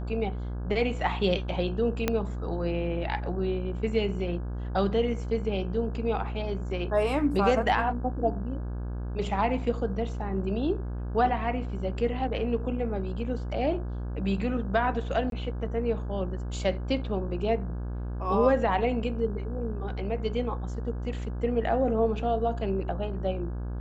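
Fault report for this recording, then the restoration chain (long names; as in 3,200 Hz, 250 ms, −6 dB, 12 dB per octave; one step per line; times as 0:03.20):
mains buzz 60 Hz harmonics 28 −33 dBFS
0:02.08: click −10 dBFS
0:15.30–0:15.32: drop-out 22 ms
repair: click removal
hum removal 60 Hz, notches 28
repair the gap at 0:15.30, 22 ms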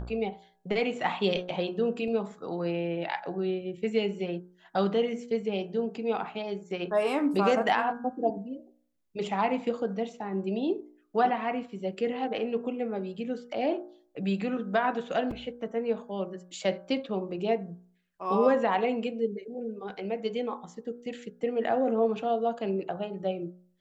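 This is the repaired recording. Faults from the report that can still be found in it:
0:02.08: click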